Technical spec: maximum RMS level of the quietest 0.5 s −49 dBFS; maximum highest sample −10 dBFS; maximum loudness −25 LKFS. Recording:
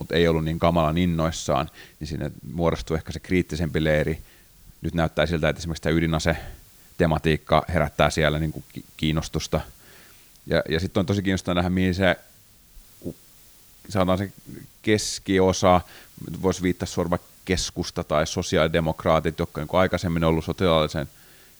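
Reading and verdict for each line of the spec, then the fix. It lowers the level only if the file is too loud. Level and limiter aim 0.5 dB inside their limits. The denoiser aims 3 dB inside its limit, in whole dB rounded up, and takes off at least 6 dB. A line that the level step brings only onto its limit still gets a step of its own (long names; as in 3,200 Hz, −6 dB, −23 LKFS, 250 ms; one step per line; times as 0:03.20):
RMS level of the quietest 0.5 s −53 dBFS: in spec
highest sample −3.5 dBFS: out of spec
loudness −24.0 LKFS: out of spec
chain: level −1.5 dB
brickwall limiter −10.5 dBFS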